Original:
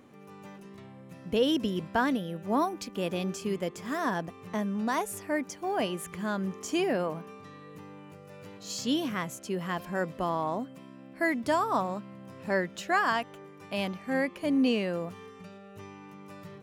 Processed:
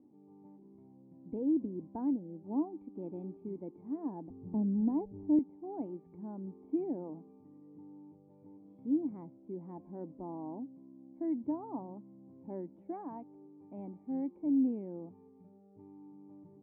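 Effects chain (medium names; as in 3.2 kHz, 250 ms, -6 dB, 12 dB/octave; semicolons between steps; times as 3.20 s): cascade formant filter u; 4.30–5.39 s: tilt EQ -4.5 dB/octave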